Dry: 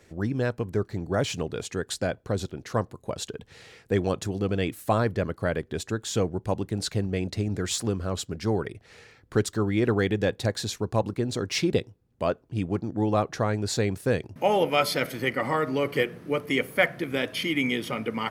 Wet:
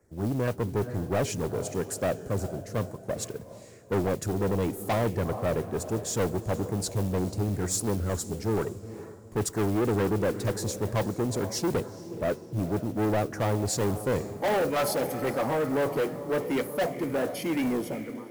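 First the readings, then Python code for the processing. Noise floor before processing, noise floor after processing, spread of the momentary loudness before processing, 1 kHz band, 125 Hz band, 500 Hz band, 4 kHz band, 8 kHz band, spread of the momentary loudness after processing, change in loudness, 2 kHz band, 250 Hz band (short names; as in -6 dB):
-60 dBFS, -46 dBFS, 7 LU, -2.0 dB, -1.0 dB, -1.0 dB, -7.5 dB, +1.5 dB, 6 LU, -1.5 dB, -7.0 dB, -1.0 dB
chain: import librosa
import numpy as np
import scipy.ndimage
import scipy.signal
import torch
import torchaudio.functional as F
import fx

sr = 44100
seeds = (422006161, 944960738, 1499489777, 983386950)

y = fx.fade_out_tail(x, sr, length_s=0.54)
y = fx.peak_eq(y, sr, hz=3400.0, db=-14.5, octaves=1.2)
y = np.clip(y, -10.0 ** (-18.5 / 20.0), 10.0 ** (-18.5 / 20.0))
y = fx.dynamic_eq(y, sr, hz=810.0, q=0.83, threshold_db=-39.0, ratio=4.0, max_db=6)
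y = fx.filter_lfo_notch(y, sr, shape='saw_down', hz=2.1, low_hz=700.0, high_hz=3800.0, q=0.76)
y = fx.mod_noise(y, sr, seeds[0], snr_db=23)
y = fx.echo_diffused(y, sr, ms=455, feedback_pct=44, wet_db=-14.5)
y = 10.0 ** (-27.5 / 20.0) * np.tanh(y / 10.0 ** (-27.5 / 20.0))
y = fx.band_widen(y, sr, depth_pct=40)
y = y * 10.0 ** (4.5 / 20.0)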